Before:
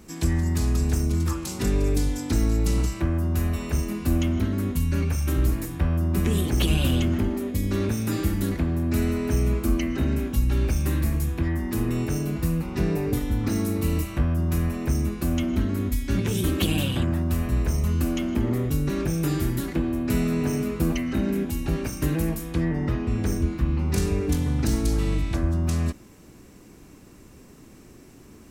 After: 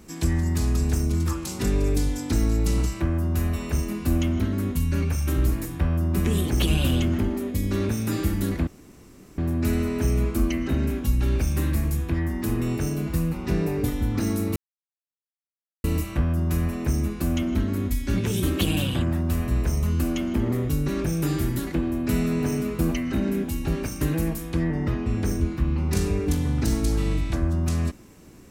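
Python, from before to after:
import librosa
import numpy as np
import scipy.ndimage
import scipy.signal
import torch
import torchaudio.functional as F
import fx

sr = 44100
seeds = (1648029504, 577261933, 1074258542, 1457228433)

y = fx.edit(x, sr, fx.insert_room_tone(at_s=8.67, length_s=0.71),
    fx.insert_silence(at_s=13.85, length_s=1.28), tone=tone)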